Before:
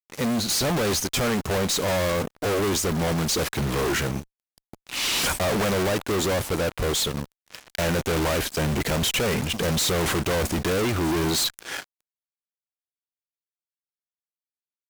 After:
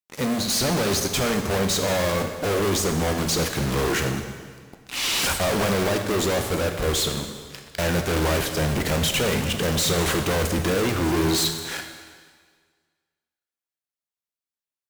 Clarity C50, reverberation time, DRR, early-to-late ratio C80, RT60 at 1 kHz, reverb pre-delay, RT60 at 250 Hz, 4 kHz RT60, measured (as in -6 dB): 7.0 dB, 1.7 s, 5.0 dB, 8.0 dB, 1.7 s, 6 ms, 1.7 s, 1.6 s